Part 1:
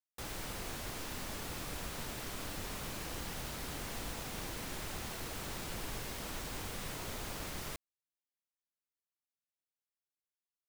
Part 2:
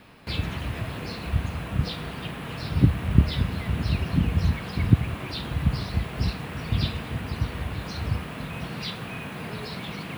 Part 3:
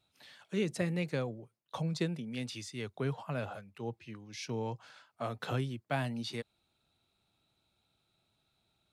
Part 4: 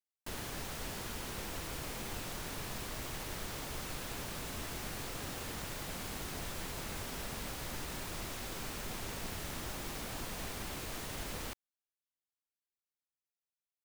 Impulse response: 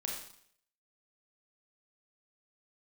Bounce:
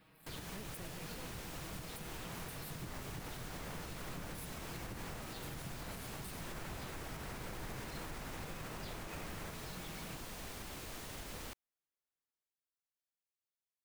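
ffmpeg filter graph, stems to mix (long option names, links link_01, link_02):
-filter_complex "[0:a]lowpass=frequency=2300:width=0.5412,lowpass=frequency=2300:width=1.3066,adelay=1750,volume=-0.5dB[link_01];[1:a]acompressor=threshold=-30dB:ratio=3,aecho=1:1:6.3:0.81,volume=-17dB[link_02];[2:a]aeval=exprs='max(val(0),0)':channel_layout=same,aexciter=amount=13.7:drive=7.6:freq=8800,volume=-15dB,asplit=2[link_03][link_04];[3:a]volume=-5dB[link_05];[link_04]apad=whole_len=548220[link_06];[link_01][link_06]sidechaincompress=threshold=-55dB:ratio=8:attack=16:release=316[link_07];[link_07][link_02][link_03][link_05]amix=inputs=4:normalize=0,alimiter=level_in=11dB:limit=-24dB:level=0:latency=1:release=104,volume=-11dB"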